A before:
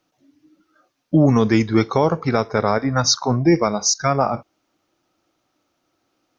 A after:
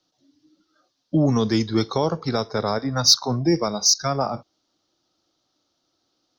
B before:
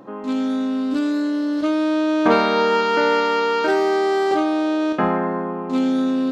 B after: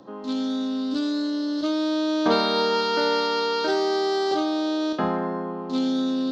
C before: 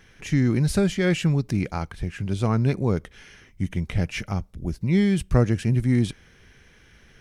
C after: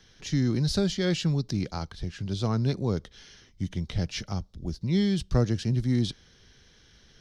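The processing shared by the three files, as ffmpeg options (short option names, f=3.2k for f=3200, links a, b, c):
-filter_complex "[0:a]highshelf=f=2.4k:g=-7.5,acrossover=split=170|910|5300[a][b][c][d];[c]aexciter=amount=7.2:drive=8.6:freq=3.6k[e];[a][b][e][d]amix=inputs=4:normalize=0,volume=-4.5dB"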